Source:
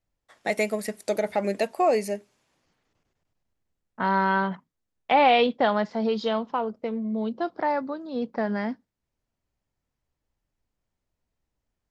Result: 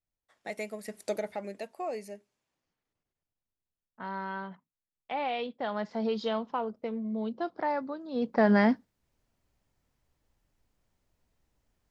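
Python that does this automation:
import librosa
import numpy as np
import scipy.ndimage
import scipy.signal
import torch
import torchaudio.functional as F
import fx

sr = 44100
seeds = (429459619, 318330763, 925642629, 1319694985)

y = fx.gain(x, sr, db=fx.line((0.82, -12.0), (1.01, -4.0), (1.51, -14.0), (5.55, -14.0), (5.95, -5.0), (8.05, -5.0), (8.51, 6.0)))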